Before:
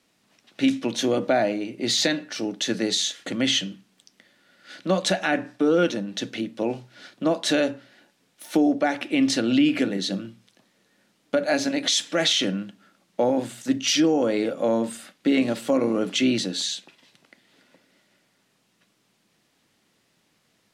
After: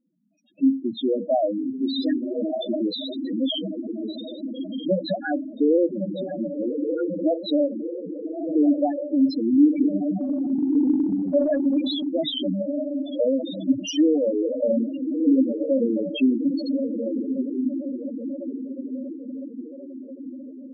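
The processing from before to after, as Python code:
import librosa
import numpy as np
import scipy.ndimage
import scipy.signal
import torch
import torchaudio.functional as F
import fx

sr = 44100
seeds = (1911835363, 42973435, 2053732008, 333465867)

y = fx.echo_diffused(x, sr, ms=1262, feedback_pct=54, wet_db=-3.0)
y = fx.spec_topn(y, sr, count=4)
y = fx.transient(y, sr, attack_db=1, sustain_db=8, at=(10.2, 12.06), fade=0.02)
y = y * librosa.db_to_amplitude(2.0)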